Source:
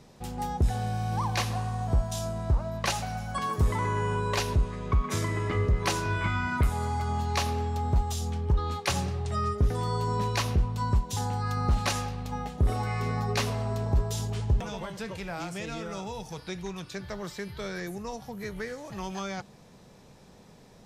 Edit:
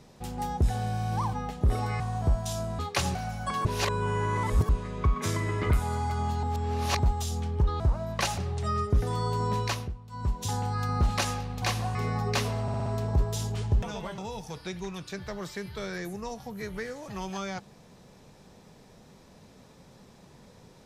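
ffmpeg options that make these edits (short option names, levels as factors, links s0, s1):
-filter_complex "[0:a]asplit=21[s0][s1][s2][s3][s4][s5][s6][s7][s8][s9][s10][s11][s12][s13][s14][s15][s16][s17][s18][s19][s20];[s0]atrim=end=1.332[s21];[s1]atrim=start=12.298:end=12.972[s22];[s2]atrim=start=1.658:end=2.452[s23];[s3]atrim=start=8.698:end=9.062[s24];[s4]atrim=start=3.028:end=3.532[s25];[s5]atrim=start=3.528:end=4.572,asetpts=PTS-STARTPTS,areverse[s26];[s6]atrim=start=4.568:end=5.582[s27];[s7]atrim=start=6.598:end=7.332[s28];[s8]atrim=start=7.328:end=7.892,asetpts=PTS-STARTPTS,areverse[s29];[s9]atrim=start=7.888:end=8.702[s30];[s10]atrim=start=2.448:end=3.032[s31];[s11]atrim=start=9.058:end=10.62,asetpts=PTS-STARTPTS,afade=t=out:st=1.242:d=0.32:silence=0.16788[s32];[s12]atrim=start=10.62:end=10.78,asetpts=PTS-STARTPTS,volume=0.168[s33];[s13]atrim=start=10.78:end=12.302,asetpts=PTS-STARTPTS,afade=t=in:d=0.32:silence=0.16788[s34];[s14]atrim=start=1.328:end=1.662[s35];[s15]atrim=start=12.968:end=13.702[s36];[s16]atrim=start=13.638:end=13.702[s37];[s17]atrim=start=13.638:end=13.702[s38];[s18]atrim=start=13.638:end=13.702[s39];[s19]atrim=start=13.638:end=14.962[s40];[s20]atrim=start=15.998[s41];[s21][s22]acrossfade=d=0.004:c1=hsin:c2=hsin[s42];[s42][s23]acrossfade=d=0.004:c1=hsin:c2=hsin[s43];[s43][s24]acrossfade=d=0.004:c1=hsin:c2=hsin[s44];[s44][s25]acrossfade=d=0.004:c1=hsin:c2=hsin[s45];[s45][s26]acrossfade=d=0.004:c1=hsin:c2=hsin[s46];[s46][s27]acrossfade=d=0.004:c1=hsin:c2=hsin[s47];[s47][s28]acrossfade=d=0.004:c1=hsin:c2=hsin[s48];[s48][s29]acrossfade=d=0.004:c1=hsin:c2=hsin[s49];[s49][s30]acrossfade=d=0.004:c1=hsin:c2=hsin[s50];[s50][s31]acrossfade=d=0.004:c1=hsin:c2=hsin[s51];[s32][s33][s34]concat=n=3:v=0:a=1[s52];[s51][s52]acrossfade=d=0.004:c1=hsin:c2=hsin[s53];[s53][s35]acrossfade=d=0.004:c1=hsin:c2=hsin[s54];[s54][s36]acrossfade=d=0.004:c1=hsin:c2=hsin[s55];[s55][s37]acrossfade=d=0.004:c1=hsin:c2=hsin[s56];[s56][s38]acrossfade=d=0.004:c1=hsin:c2=hsin[s57];[s57][s39]acrossfade=d=0.004:c1=hsin:c2=hsin[s58];[s58][s40]acrossfade=d=0.004:c1=hsin:c2=hsin[s59];[s59][s41]acrossfade=d=0.004:c1=hsin:c2=hsin"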